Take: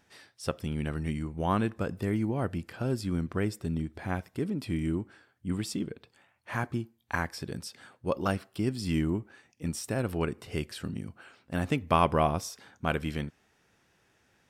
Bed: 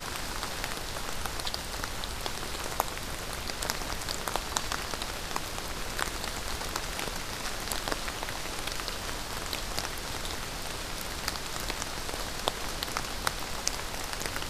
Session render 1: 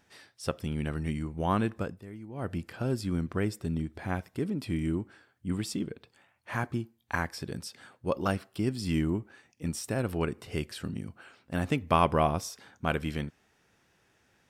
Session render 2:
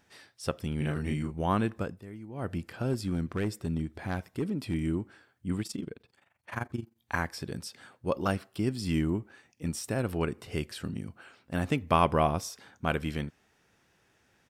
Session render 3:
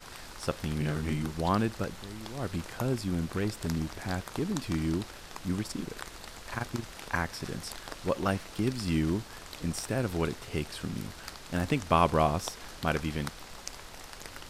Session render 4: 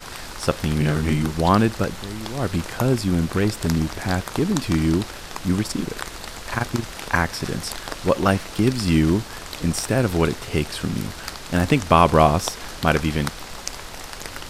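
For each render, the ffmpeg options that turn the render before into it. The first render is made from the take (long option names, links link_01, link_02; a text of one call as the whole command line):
ffmpeg -i in.wav -filter_complex "[0:a]asplit=3[link_01][link_02][link_03];[link_01]atrim=end=2.02,asetpts=PTS-STARTPTS,afade=type=out:start_time=1.78:duration=0.24:silence=0.177828[link_04];[link_02]atrim=start=2.02:end=2.3,asetpts=PTS-STARTPTS,volume=-15dB[link_05];[link_03]atrim=start=2.3,asetpts=PTS-STARTPTS,afade=type=in:duration=0.24:silence=0.177828[link_06];[link_04][link_05][link_06]concat=n=3:v=0:a=1" out.wav
ffmpeg -i in.wav -filter_complex "[0:a]asplit=3[link_01][link_02][link_03];[link_01]afade=type=out:start_time=0.8:duration=0.02[link_04];[link_02]asplit=2[link_05][link_06];[link_06]adelay=34,volume=-2.5dB[link_07];[link_05][link_07]amix=inputs=2:normalize=0,afade=type=in:start_time=0.8:duration=0.02,afade=type=out:start_time=1.3:duration=0.02[link_08];[link_03]afade=type=in:start_time=1.3:duration=0.02[link_09];[link_04][link_08][link_09]amix=inputs=3:normalize=0,asettb=1/sr,asplit=3[link_10][link_11][link_12];[link_10]atrim=end=2.934[link_13];[link_11]atrim=start=2.93:end=4.74,asetpts=PTS-STARTPTS,afade=type=in:duration=0.004:curve=qsin,afade=type=out:start_time=1.806:duration=0.004:curve=qsin,asoftclip=type=hard:threshold=-24dB[link_14];[link_12]atrim=start=4.736[link_15];[link_13][link_14]acrossfade=duration=0.004:curve1=hsin:curve2=qsin[link_16];[link_16][link_15]acrossfade=duration=0.004:curve1=qsin:curve2=hsin,asettb=1/sr,asplit=3[link_17][link_18][link_19];[link_17]atrim=end=5.624[link_20];[link_18]atrim=start=5.62:end=6.97,asetpts=PTS-STARTPTS,afade=type=in:duration=0.004:curve=qsin,afade=type=out:start_time=1.346:duration=0.004:curve=qsin,tremolo=f=23:d=0.824[link_21];[link_19]atrim=start=6.966[link_22];[link_20][link_21]acrossfade=duration=0.004:curve1=hsin:curve2=qsin[link_23];[link_23][link_22]acrossfade=duration=0.004:curve1=qsin:curve2=hsin" out.wav
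ffmpeg -i in.wav -i bed.wav -filter_complex "[1:a]volume=-10.5dB[link_01];[0:a][link_01]amix=inputs=2:normalize=0" out.wav
ffmpeg -i in.wav -af "volume=10.5dB,alimiter=limit=-1dB:level=0:latency=1" out.wav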